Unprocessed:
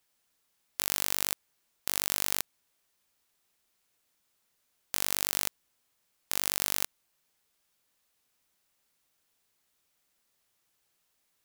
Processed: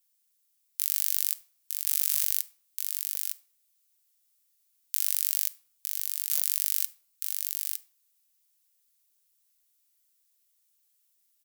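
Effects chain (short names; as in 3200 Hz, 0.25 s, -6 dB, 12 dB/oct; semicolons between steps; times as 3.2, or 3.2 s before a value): differentiator; echo 0.909 s -4.5 dB; shoebox room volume 830 m³, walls furnished, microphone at 0.49 m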